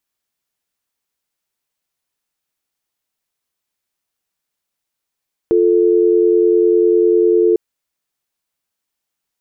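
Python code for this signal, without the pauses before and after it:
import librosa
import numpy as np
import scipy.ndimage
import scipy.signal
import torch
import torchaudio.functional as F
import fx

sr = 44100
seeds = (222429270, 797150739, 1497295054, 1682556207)

y = fx.call_progress(sr, length_s=2.05, kind='dial tone', level_db=-12.0)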